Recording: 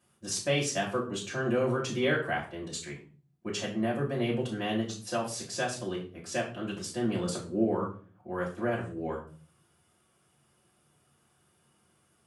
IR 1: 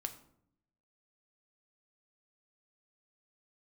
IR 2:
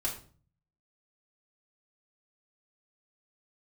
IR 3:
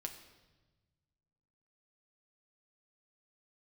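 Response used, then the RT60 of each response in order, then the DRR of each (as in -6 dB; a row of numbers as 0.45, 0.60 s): 2; 0.70, 0.45, 1.2 s; 6.5, -4.5, 3.0 dB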